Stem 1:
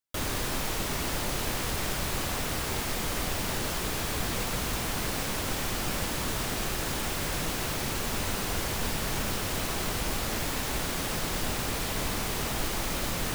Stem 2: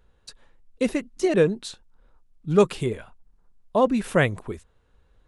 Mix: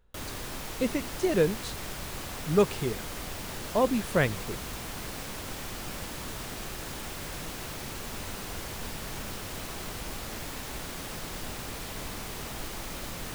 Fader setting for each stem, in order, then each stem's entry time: -7.0, -5.0 dB; 0.00, 0.00 s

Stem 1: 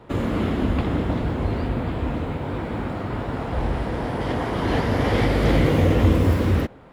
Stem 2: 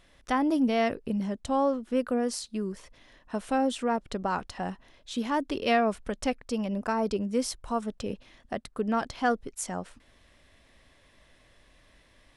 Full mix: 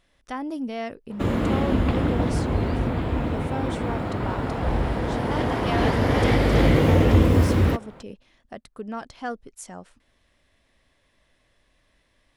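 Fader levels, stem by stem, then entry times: +0.5, -5.5 dB; 1.10, 0.00 s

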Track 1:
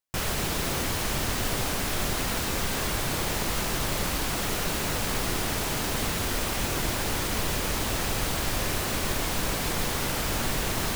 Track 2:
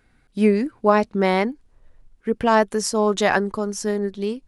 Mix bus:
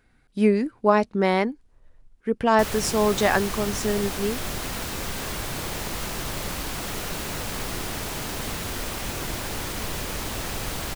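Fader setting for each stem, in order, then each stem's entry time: -2.5, -2.0 dB; 2.45, 0.00 s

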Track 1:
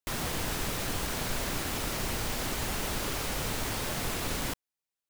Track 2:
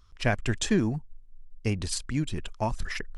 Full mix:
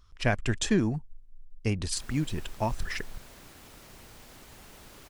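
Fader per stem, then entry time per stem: -18.0, -0.5 dB; 1.90, 0.00 s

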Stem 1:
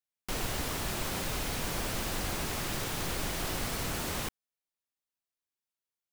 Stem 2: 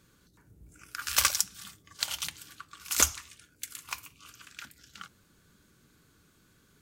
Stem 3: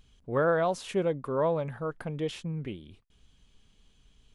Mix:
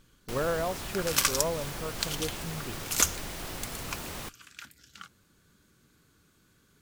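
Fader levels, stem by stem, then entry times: -4.5, -1.0, -4.5 dB; 0.00, 0.00, 0.00 s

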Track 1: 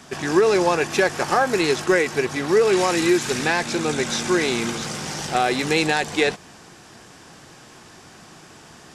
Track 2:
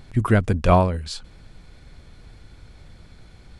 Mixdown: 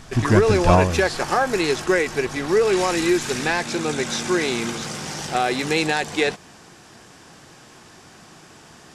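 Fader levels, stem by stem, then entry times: -1.0, 0.0 dB; 0.00, 0.00 s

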